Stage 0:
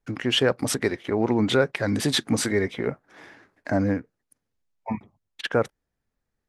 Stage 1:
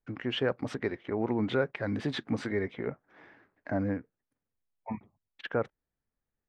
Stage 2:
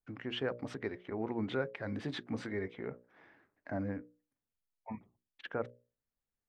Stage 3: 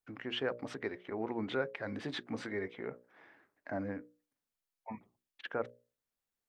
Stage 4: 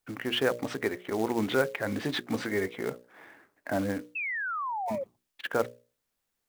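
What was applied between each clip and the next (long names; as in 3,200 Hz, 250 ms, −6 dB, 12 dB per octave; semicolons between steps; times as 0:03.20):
low-pass filter 2,600 Hz 12 dB per octave; level −7.5 dB
mains-hum notches 60/120/180/240/300/360/420/480/540/600 Hz; level −6 dB
low-shelf EQ 190 Hz −10 dB; level +2 dB
floating-point word with a short mantissa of 2 bits; sound drawn into the spectrogram fall, 0:04.15–0:05.04, 520–2,700 Hz −41 dBFS; level +8.5 dB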